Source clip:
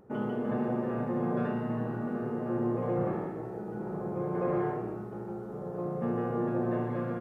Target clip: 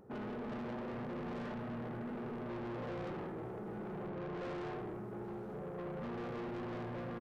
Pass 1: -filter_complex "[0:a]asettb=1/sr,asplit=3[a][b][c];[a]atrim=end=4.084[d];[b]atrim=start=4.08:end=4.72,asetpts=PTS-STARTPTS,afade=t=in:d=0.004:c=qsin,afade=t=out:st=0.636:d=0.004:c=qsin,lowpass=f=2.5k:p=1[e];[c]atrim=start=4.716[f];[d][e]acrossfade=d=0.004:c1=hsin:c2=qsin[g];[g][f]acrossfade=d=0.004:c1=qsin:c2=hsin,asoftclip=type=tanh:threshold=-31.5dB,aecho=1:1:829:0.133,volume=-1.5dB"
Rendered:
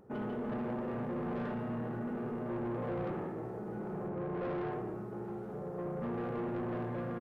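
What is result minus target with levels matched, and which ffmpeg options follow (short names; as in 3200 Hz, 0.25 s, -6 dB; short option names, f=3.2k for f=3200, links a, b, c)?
soft clip: distortion -5 dB
-filter_complex "[0:a]asettb=1/sr,asplit=3[a][b][c];[a]atrim=end=4.084[d];[b]atrim=start=4.08:end=4.72,asetpts=PTS-STARTPTS,afade=t=in:d=0.004:c=qsin,afade=t=out:st=0.636:d=0.004:c=qsin,lowpass=f=2.5k:p=1[e];[c]atrim=start=4.716[f];[d][e]acrossfade=d=0.004:c1=hsin:c2=qsin[g];[g][f]acrossfade=d=0.004:c1=qsin:c2=hsin,asoftclip=type=tanh:threshold=-38.5dB,aecho=1:1:829:0.133,volume=-1.5dB"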